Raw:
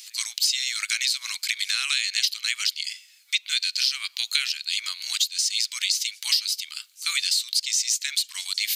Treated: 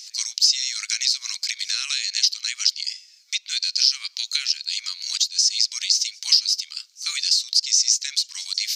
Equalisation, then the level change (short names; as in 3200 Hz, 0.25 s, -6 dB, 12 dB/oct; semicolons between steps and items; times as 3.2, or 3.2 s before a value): EQ curve 3400 Hz 0 dB, 5500 Hz +14 dB, 9900 Hz -7 dB; -4.5 dB